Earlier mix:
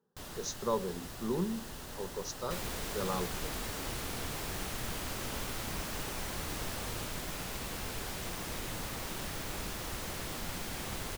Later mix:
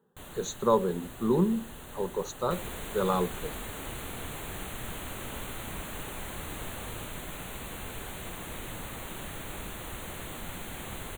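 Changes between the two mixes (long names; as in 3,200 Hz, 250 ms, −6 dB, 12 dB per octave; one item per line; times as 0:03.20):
speech +8.5 dB
master: add Butterworth band-reject 5,200 Hz, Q 1.8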